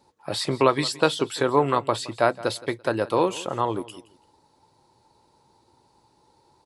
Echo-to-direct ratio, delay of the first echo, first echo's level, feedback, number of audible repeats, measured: -18.5 dB, 169 ms, -19.0 dB, 28%, 2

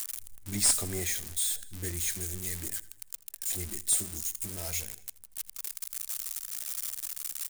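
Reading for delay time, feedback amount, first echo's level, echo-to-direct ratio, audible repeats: 81 ms, 55%, -20.0 dB, -18.5 dB, 3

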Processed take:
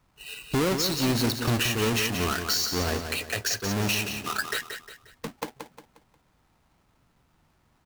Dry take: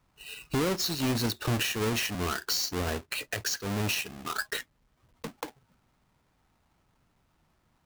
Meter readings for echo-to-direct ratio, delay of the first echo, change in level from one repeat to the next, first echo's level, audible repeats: -7.0 dB, 178 ms, -8.5 dB, -7.5 dB, 4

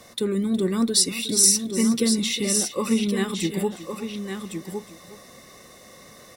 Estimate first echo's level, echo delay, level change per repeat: -15.0 dB, 364 ms, no regular repeats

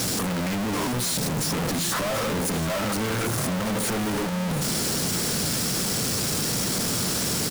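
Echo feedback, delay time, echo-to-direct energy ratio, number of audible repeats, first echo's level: no regular repeats, 732 ms, -11.0 dB, 1, -11.0 dB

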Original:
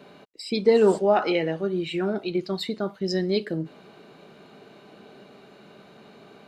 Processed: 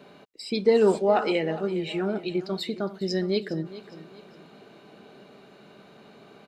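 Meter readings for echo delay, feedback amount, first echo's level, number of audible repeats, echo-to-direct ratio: 410 ms, 37%, -16.0 dB, 3, -15.5 dB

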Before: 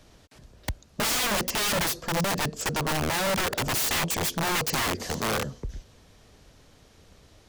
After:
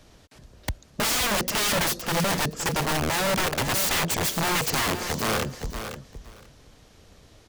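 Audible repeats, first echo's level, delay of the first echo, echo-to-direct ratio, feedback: 2, -9.5 dB, 515 ms, -9.5 dB, 16%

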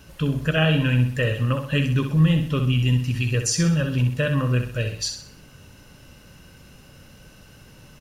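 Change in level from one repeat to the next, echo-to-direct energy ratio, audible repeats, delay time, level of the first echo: -7.5 dB, -6.5 dB, 4, 64 ms, -7.5 dB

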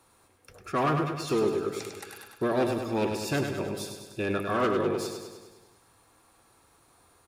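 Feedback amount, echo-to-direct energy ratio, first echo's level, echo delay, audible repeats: 60%, -4.0 dB, -6.0 dB, 101 ms, 7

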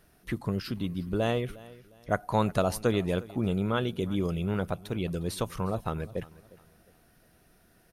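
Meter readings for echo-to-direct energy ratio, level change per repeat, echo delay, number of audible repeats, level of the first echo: -20.0 dB, -9.5 dB, 357 ms, 2, -20.5 dB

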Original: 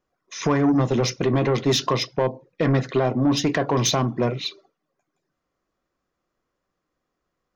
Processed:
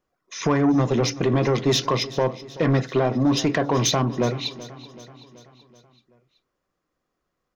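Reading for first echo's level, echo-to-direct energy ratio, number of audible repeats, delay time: -17.5 dB, -16.0 dB, 4, 380 ms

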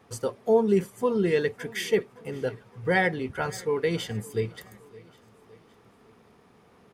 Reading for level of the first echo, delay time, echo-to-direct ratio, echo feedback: -22.0 dB, 564 ms, -21.0 dB, 50%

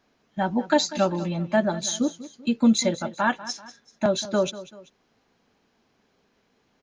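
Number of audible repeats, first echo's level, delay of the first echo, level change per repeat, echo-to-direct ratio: 2, -16.0 dB, 193 ms, -7.5 dB, -15.5 dB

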